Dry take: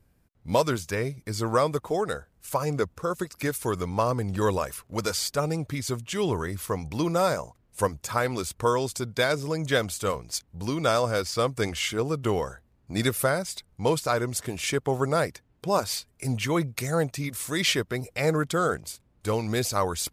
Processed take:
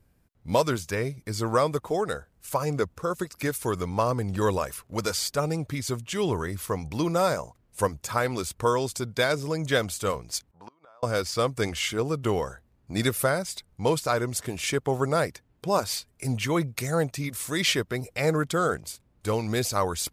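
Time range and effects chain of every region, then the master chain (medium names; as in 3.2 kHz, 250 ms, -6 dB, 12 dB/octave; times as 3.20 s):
10.51–11.03 s: band-pass filter 990 Hz, Q 1.6 + inverted gate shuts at -31 dBFS, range -27 dB
whole clip: none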